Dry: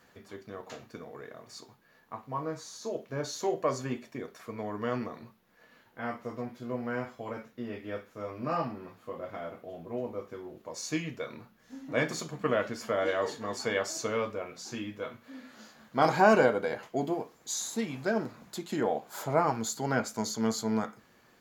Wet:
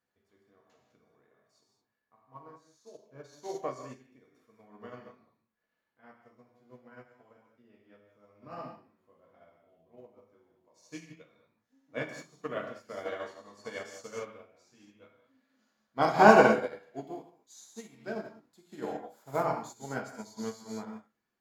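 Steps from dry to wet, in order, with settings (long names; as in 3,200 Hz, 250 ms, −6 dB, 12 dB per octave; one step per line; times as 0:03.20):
reverb whose tail is shaped and stops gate 240 ms flat, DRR −0.5 dB
expander for the loud parts 2.5 to 1, over −36 dBFS
level +3.5 dB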